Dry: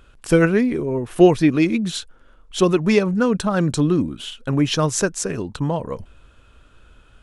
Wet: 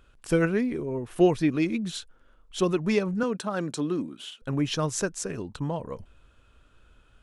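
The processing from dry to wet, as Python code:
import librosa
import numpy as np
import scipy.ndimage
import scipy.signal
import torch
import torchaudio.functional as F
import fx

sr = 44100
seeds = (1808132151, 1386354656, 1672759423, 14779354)

y = fx.highpass(x, sr, hz=230.0, slope=12, at=(3.23, 4.42))
y = y * 10.0 ** (-8.0 / 20.0)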